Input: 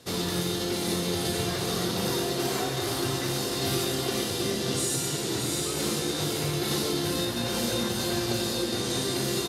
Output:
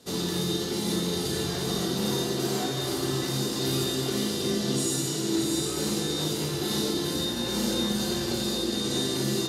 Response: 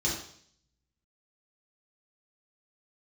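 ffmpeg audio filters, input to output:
-filter_complex "[0:a]asplit=2[s0][s1];[s1]highpass=f=170:p=1[s2];[1:a]atrim=start_sample=2205,lowpass=6500[s3];[s2][s3]afir=irnorm=-1:irlink=0,volume=0.316[s4];[s0][s4]amix=inputs=2:normalize=0,volume=0.75"

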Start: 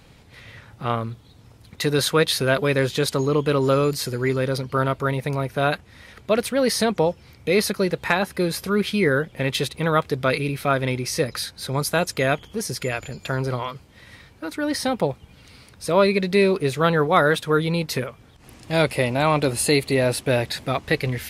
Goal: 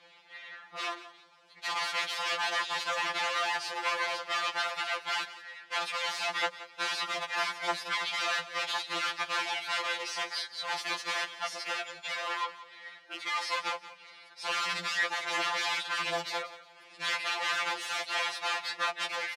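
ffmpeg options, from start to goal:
-af "acontrast=66,aeval=exprs='(mod(4.73*val(0)+1,2)-1)/4.73':c=same,atempo=1.1,asoftclip=type=tanh:threshold=0.133,highpass=750,lowpass=3900,aecho=1:1:176|352|528:0.168|0.0504|0.0151,afftfilt=real='re*2.83*eq(mod(b,8),0)':imag='im*2.83*eq(mod(b,8),0)':win_size=2048:overlap=0.75,volume=0.631"

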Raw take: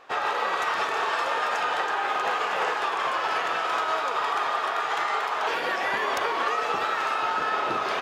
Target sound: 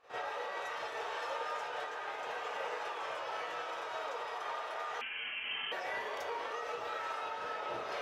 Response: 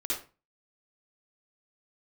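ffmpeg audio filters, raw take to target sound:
-filter_complex "[0:a]alimiter=limit=0.0841:level=0:latency=1:release=407[s0];[1:a]atrim=start_sample=2205,asetrate=70560,aresample=44100[s1];[s0][s1]afir=irnorm=-1:irlink=0,asettb=1/sr,asplit=3[s2][s3][s4];[s2]atrim=end=5.014[s5];[s3]atrim=start=5.01:end=5.72,asetpts=PTS-STARTPTS,afade=t=in:d=0.004:c=qsin,afade=t=out:st=0.706:d=0.004:c=qsin,lowpass=f=3100:t=q:w=0.5098,lowpass=f=3100:t=q:w=0.6013,lowpass=f=3100:t=q:w=0.9,lowpass=f=3100:t=q:w=2.563,afreqshift=-3600[s6];[s4]atrim=start=5.716[s7];[s5][s6]acrossfade=d=0.004:c1=hsin:c2=qsin[s8];[s8][s7]acrossfade=d=0.004:c1=qsin:c2=hsin,volume=0.376"

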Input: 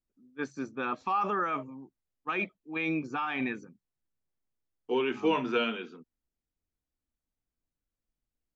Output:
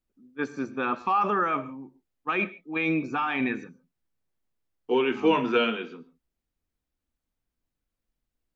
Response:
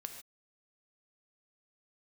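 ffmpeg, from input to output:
-filter_complex "[0:a]asplit=2[s0][s1];[1:a]atrim=start_sample=2205,lowpass=4900[s2];[s1][s2]afir=irnorm=-1:irlink=0,volume=0.794[s3];[s0][s3]amix=inputs=2:normalize=0,volume=1.19"

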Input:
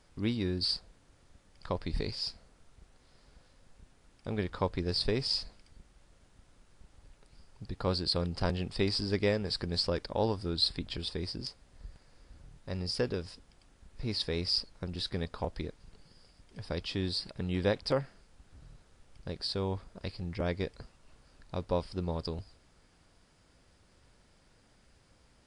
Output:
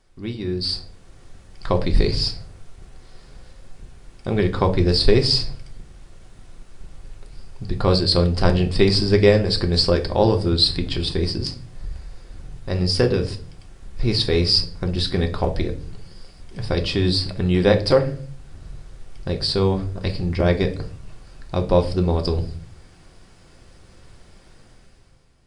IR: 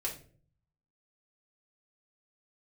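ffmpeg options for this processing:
-filter_complex "[0:a]dynaudnorm=f=170:g=9:m=4.22,asplit=2[s0][s1];[1:a]atrim=start_sample=2205,lowshelf=f=330:g=5[s2];[s1][s2]afir=irnorm=-1:irlink=0,volume=0.841[s3];[s0][s3]amix=inputs=2:normalize=0,volume=0.562"

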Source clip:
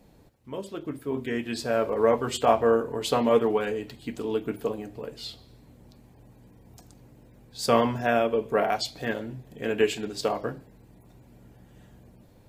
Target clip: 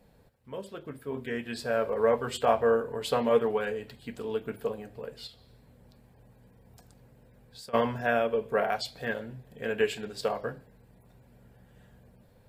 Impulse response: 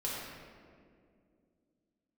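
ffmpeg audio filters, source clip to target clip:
-filter_complex "[0:a]equalizer=f=315:t=o:w=0.33:g=-10,equalizer=f=500:t=o:w=0.33:g=4,equalizer=f=1600:t=o:w=0.33:g=5,equalizer=f=6300:t=o:w=0.33:g=-6,asplit=3[s0][s1][s2];[s0]afade=t=out:st=5.26:d=0.02[s3];[s1]acompressor=threshold=0.00891:ratio=12,afade=t=in:st=5.26:d=0.02,afade=t=out:st=7.73:d=0.02[s4];[s2]afade=t=in:st=7.73:d=0.02[s5];[s3][s4][s5]amix=inputs=3:normalize=0,volume=0.631"

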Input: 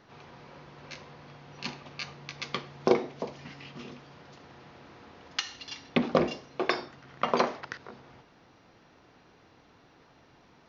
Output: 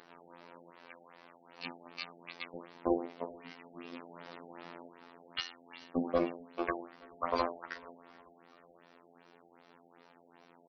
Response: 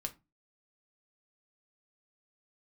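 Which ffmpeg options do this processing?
-filter_complex "[0:a]asettb=1/sr,asplit=3[s0][s1][s2];[s0]atrim=end=0.714[s3];[s1]atrim=start=0.71:end=1.59,asetpts=PTS-STARTPTS,afade=t=in:d=0.004:c=qsin,afade=t=out:st=0.876:d=0.004:c=qsin,lowshelf=f=450:g=-8[s4];[s2]atrim=start=1.586[s5];[s3][s4]acrossfade=d=0.004:c1=hsin:c2=qsin[s6];[s6][s5]acrossfade=d=0.004:c1=qsin:c2=hsin,asettb=1/sr,asplit=3[s7][s8][s9];[s7]atrim=end=3.934[s10];[s8]atrim=start=3.93:end=4.89,asetpts=PTS-STARTPTS,afade=t=in:d=0.004:c=qsin,afade=t=out:st=0.956:d=0.004:c=qsin,acontrast=89[s11];[s9]atrim=start=4.886[s12];[s10][s11]acrossfade=d=0.004:c1=hsin:c2=qsin[s13];[s13][s12]acrossfade=d=0.004:c1=qsin:c2=hsin,acrossover=split=180|940|2500[s14][s15][s16][s17];[s14]acrusher=bits=3:mix=0:aa=0.5[s18];[s18][s15][s16][s17]amix=inputs=4:normalize=0,afftfilt=real='hypot(re,im)*cos(PI*b)':imag='0':win_size=2048:overlap=0.75,asoftclip=type=tanh:threshold=0.158,aecho=1:1:434|868|1302:0.0668|0.0307|0.0141,acompressor=mode=upward:threshold=0.00282:ratio=2.5,equalizer=f=6400:t=o:w=0.23:g=-3,afftfilt=real='re*lt(b*sr/1024,840*pow(6400/840,0.5+0.5*sin(2*PI*2.6*pts/sr)))':imag='im*lt(b*sr/1024,840*pow(6400/840,0.5+0.5*sin(2*PI*2.6*pts/sr)))':win_size=1024:overlap=0.75"

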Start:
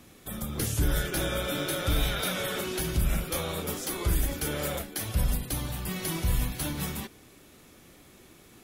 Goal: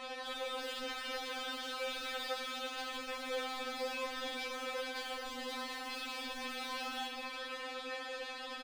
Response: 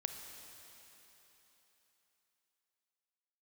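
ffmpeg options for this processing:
-filter_complex "[0:a]lowshelf=f=280:t=q:w=1.5:g=-10,bandreject=f=2100:w=17,aresample=11025,asoftclip=type=hard:threshold=0.0112,aresample=44100,asplit=2[s0][s1];[s1]highpass=f=720:p=1,volume=31.6,asoftclip=type=tanh:threshold=0.0211[s2];[s0][s2]amix=inputs=2:normalize=0,lowpass=f=3800:p=1,volume=0.501[s3];[1:a]atrim=start_sample=2205[s4];[s3][s4]afir=irnorm=-1:irlink=0,afftfilt=real='re*3.46*eq(mod(b,12),0)':imag='im*3.46*eq(mod(b,12),0)':win_size=2048:overlap=0.75,volume=1.26"

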